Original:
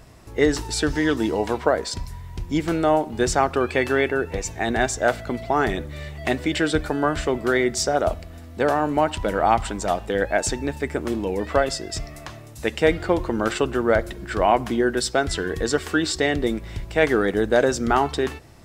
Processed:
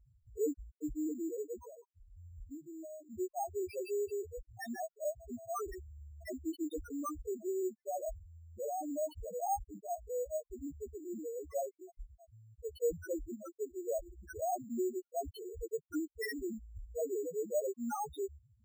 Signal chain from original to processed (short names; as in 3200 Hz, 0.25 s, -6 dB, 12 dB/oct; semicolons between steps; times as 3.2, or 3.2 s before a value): pre-emphasis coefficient 0.8; 13.35–14.01 expander -30 dBFS; bell 6300 Hz +10.5 dB 0.59 oct; 1.57–3.1 compressor 16:1, threshold -41 dBFS, peak gain reduction 18.5 dB; loudest bins only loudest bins 1; careless resampling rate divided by 6×, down filtered, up hold; gain +5.5 dB